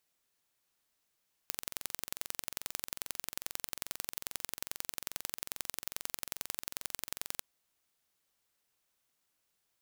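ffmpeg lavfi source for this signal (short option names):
-f lavfi -i "aevalsrc='0.422*eq(mod(n,1969),0)*(0.5+0.5*eq(mod(n,3938),0))':d=5.91:s=44100"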